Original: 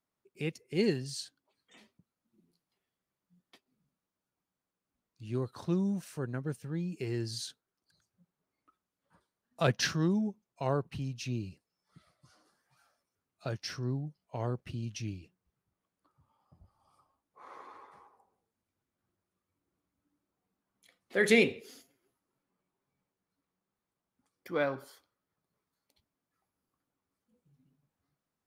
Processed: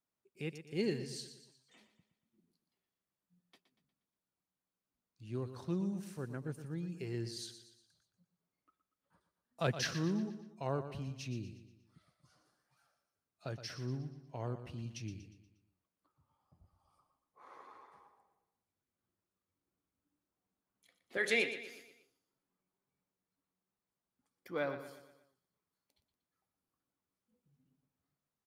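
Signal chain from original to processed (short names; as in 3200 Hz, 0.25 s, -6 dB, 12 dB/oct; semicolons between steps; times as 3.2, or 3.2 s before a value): 21.17–21.71 weighting filter A; feedback echo 0.119 s, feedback 46%, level -11 dB; gain -6 dB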